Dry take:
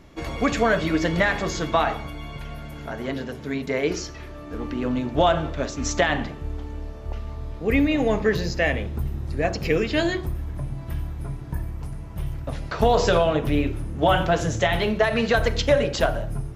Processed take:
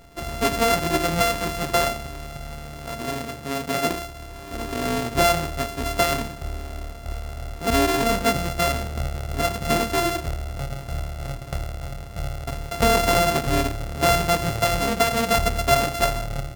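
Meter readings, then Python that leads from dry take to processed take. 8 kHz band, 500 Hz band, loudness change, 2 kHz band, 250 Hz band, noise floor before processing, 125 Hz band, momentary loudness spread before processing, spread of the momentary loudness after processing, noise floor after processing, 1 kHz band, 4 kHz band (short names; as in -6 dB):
+7.5 dB, -1.0 dB, +0.5 dB, -0.5 dB, -2.5 dB, -37 dBFS, -0.5 dB, 14 LU, 15 LU, -37 dBFS, +3.0 dB, +3.5 dB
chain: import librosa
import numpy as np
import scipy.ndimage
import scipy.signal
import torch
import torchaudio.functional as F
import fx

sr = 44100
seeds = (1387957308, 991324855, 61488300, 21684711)

y = np.r_[np.sort(x[:len(x) // 64 * 64].reshape(-1, 64), axis=1).ravel(), x[len(x) // 64 * 64:]]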